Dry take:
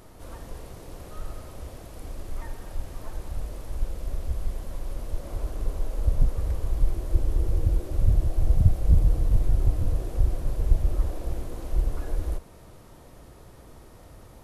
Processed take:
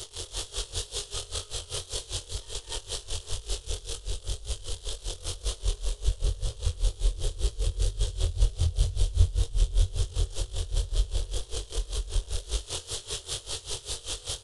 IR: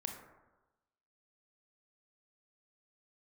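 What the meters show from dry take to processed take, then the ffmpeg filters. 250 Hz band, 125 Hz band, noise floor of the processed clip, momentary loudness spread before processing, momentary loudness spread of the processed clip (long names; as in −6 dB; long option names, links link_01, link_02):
−11.0 dB, −4.0 dB, −49 dBFS, 19 LU, 7 LU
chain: -filter_complex "[0:a]aeval=exprs='val(0)+0.5*0.0335*sgn(val(0))':channel_layout=same,firequalizer=gain_entry='entry(100,0);entry(210,-28);entry(410,0);entry(650,-12);entry(1400,-9);entry(2200,-11);entry(3200,11);entry(4700,6)':delay=0.05:min_phase=1,asplit=2[link_01][link_02];[link_02]aecho=0:1:207|279.9:0.891|0.794[link_03];[link_01][link_03]amix=inputs=2:normalize=0,aresample=22050,aresample=44100,acrossover=split=210|610[link_04][link_05][link_06];[link_05]alimiter=level_in=17dB:limit=-24dB:level=0:latency=1,volume=-17dB[link_07];[link_04][link_07][link_06]amix=inputs=3:normalize=0,lowshelf=frequency=130:gain=-9.5,asplit=2[link_08][link_09];[link_09]adelay=24,volume=-6dB[link_10];[link_08][link_10]amix=inputs=2:normalize=0,acontrast=42,flanger=delay=19:depth=5.1:speed=2,aeval=exprs='val(0)*pow(10,-20*(0.5-0.5*cos(2*PI*5.1*n/s))/20)':channel_layout=same"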